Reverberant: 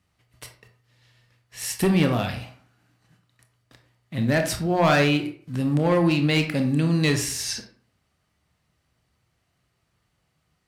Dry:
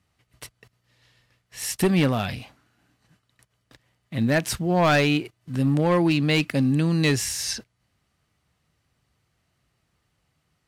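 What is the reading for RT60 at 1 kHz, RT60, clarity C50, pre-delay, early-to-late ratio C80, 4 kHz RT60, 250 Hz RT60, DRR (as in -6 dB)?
0.50 s, 0.55 s, 9.0 dB, 21 ms, 13.5 dB, 0.30 s, 0.50 s, 5.0 dB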